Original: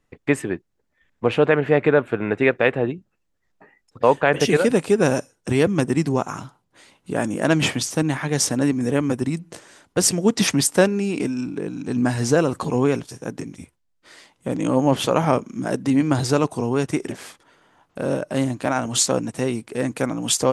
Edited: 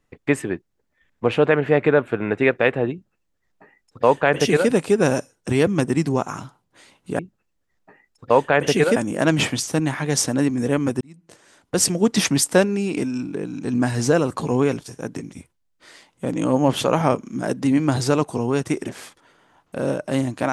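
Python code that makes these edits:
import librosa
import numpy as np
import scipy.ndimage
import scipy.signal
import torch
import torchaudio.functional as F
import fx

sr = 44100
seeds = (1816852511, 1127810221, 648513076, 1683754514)

y = fx.edit(x, sr, fx.duplicate(start_s=2.92, length_s=1.77, to_s=7.19),
    fx.fade_in_span(start_s=9.24, length_s=0.86), tone=tone)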